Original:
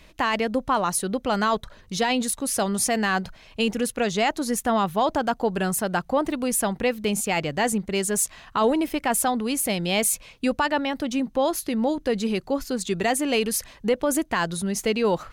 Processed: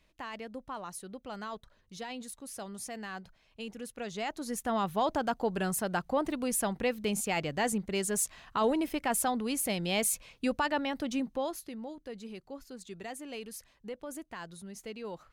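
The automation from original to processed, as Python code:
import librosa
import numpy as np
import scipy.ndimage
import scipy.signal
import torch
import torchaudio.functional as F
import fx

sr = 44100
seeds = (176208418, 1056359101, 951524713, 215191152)

y = fx.gain(x, sr, db=fx.line((3.72, -18.0), (4.93, -7.0), (11.19, -7.0), (11.87, -19.0)))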